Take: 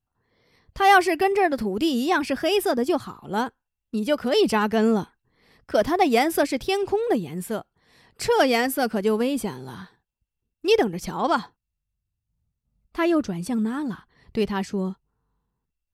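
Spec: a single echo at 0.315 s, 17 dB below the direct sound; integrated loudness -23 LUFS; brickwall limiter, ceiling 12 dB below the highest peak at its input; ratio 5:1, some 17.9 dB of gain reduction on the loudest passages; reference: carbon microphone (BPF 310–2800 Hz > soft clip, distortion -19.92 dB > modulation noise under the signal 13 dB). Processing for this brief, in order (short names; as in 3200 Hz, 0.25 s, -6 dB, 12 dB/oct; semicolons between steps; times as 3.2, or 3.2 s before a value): compressor 5:1, threshold -34 dBFS; limiter -32.5 dBFS; BPF 310–2800 Hz; echo 0.315 s -17 dB; soft clip -35 dBFS; modulation noise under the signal 13 dB; gain +22 dB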